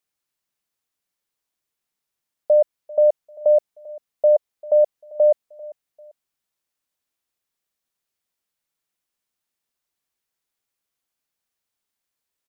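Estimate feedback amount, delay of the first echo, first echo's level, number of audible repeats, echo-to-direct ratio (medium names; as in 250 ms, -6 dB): 32%, 394 ms, -21.0 dB, 2, -20.5 dB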